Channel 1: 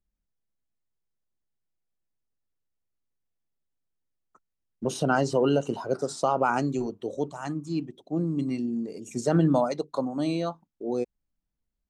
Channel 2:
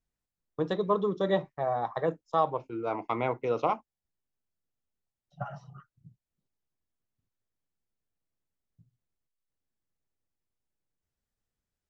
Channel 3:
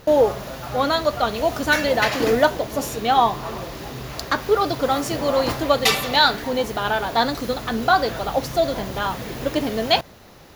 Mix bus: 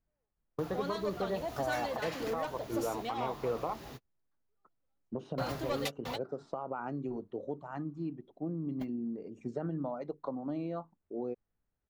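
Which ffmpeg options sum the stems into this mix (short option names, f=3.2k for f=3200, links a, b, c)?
-filter_complex "[0:a]acompressor=threshold=-27dB:ratio=6,adelay=300,volume=-5.5dB[a];[1:a]volume=3dB,asplit=2[b][c];[2:a]asoftclip=type=tanh:threshold=-14.5dB,volume=-12dB[d];[c]apad=whole_len=465358[e];[d][e]sidechaingate=range=-59dB:threshold=-53dB:ratio=16:detection=peak[f];[a][b]amix=inputs=2:normalize=0,lowpass=1.7k,acompressor=threshold=-29dB:ratio=3,volume=0dB[g];[f][g]amix=inputs=2:normalize=0,alimiter=limit=-24dB:level=0:latency=1:release=415"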